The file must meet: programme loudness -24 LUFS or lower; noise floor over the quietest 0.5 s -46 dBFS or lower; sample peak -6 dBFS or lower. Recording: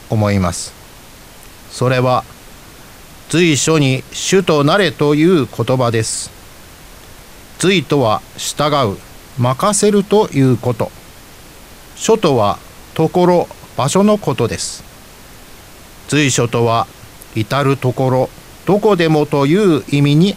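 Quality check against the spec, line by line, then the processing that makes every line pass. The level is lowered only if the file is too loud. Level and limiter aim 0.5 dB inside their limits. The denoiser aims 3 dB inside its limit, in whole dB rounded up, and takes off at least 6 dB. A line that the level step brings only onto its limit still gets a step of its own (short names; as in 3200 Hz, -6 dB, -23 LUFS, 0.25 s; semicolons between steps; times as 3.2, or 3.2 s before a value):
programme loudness -14.5 LUFS: fail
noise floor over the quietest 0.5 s -38 dBFS: fail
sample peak -2.0 dBFS: fail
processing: gain -10 dB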